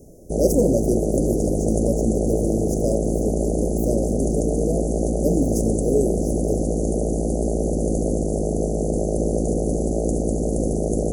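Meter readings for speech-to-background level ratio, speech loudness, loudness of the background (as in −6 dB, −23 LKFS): −3.0 dB, −26.0 LKFS, −23.0 LKFS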